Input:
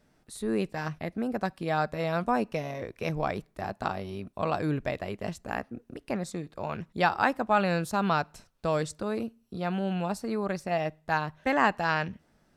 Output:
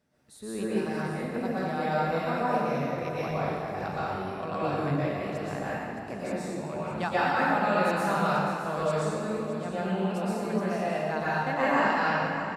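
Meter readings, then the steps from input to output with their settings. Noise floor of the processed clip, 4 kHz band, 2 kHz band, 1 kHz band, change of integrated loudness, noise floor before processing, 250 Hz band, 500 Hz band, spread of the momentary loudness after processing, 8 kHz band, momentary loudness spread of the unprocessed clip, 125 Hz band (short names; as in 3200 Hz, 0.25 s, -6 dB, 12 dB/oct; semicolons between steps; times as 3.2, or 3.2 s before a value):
-37 dBFS, 0.0 dB, +1.5 dB, +1.5 dB, +1.5 dB, -67 dBFS, +1.0 dB, +2.0 dB, 9 LU, 0.0 dB, 12 LU, +1.0 dB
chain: HPF 70 Hz; echo 0.618 s -11 dB; plate-style reverb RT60 2.1 s, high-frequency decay 0.65×, pre-delay 0.105 s, DRR -9 dB; gain -8.5 dB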